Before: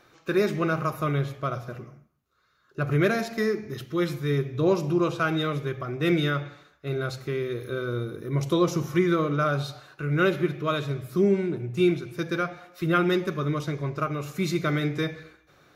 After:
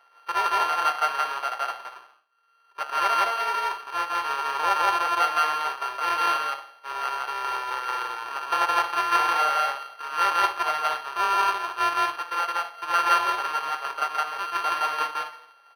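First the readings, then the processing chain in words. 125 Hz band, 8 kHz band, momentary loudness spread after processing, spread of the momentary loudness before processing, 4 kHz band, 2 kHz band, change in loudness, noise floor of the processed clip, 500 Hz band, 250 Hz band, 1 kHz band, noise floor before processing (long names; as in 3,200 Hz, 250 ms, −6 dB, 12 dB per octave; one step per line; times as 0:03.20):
below −30 dB, +5.5 dB, 8 LU, 9 LU, +5.0 dB, +4.0 dB, +2.0 dB, −58 dBFS, −10.0 dB, −22.0 dB, +11.0 dB, −63 dBFS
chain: samples sorted by size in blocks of 32 samples
high-pass filter 750 Hz 24 dB per octave
head-to-tape spacing loss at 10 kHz 21 dB
on a send: loudspeakers that aren't time-aligned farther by 57 metres 0 dB, 77 metres −10 dB
on the sum: linearly interpolated sample-rate reduction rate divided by 6×
level +6 dB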